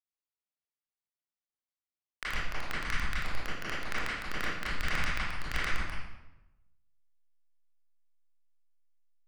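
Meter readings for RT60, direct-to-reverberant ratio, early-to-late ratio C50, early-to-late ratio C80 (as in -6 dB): 0.95 s, -10.0 dB, -2.0 dB, 3.0 dB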